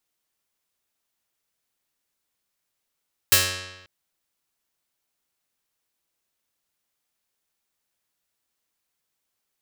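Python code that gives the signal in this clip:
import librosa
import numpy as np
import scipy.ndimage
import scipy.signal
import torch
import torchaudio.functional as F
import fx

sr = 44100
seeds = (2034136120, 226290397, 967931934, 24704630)

y = fx.pluck(sr, length_s=0.54, note=42, decay_s=1.07, pick=0.37, brightness='medium')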